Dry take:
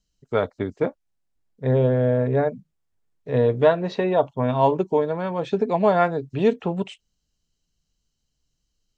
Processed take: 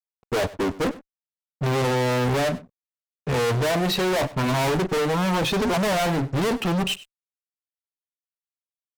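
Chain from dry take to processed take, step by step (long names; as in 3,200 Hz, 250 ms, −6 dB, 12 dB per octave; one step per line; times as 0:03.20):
noise reduction from a noise print of the clip's start 11 dB
fuzz pedal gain 42 dB, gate −52 dBFS
single-tap delay 97 ms −18.5 dB
level −8 dB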